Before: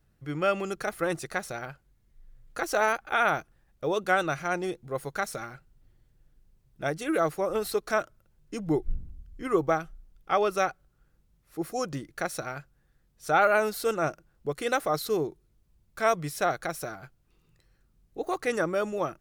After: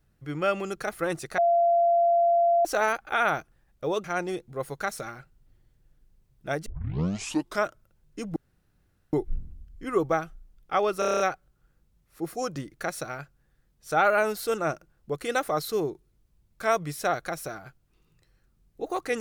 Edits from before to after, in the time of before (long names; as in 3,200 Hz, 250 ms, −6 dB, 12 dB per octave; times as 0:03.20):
0:01.38–0:02.65: beep over 686 Hz −18 dBFS
0:04.04–0:04.39: remove
0:07.01: tape start 0.98 s
0:08.71: splice in room tone 0.77 s
0:10.57: stutter 0.03 s, 8 plays